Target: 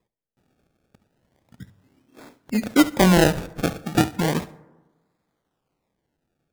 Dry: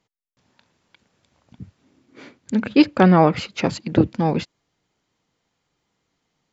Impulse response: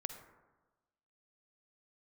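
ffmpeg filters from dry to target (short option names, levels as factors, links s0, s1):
-filter_complex "[0:a]acrusher=samples=30:mix=1:aa=0.000001:lfo=1:lforange=30:lforate=0.34,bandreject=f=50:t=h:w=6,bandreject=f=100:t=h:w=6,asplit=2[s0][s1];[1:a]atrim=start_sample=2205,adelay=70[s2];[s1][s2]afir=irnorm=-1:irlink=0,volume=0.2[s3];[s0][s3]amix=inputs=2:normalize=0,volume=0.75"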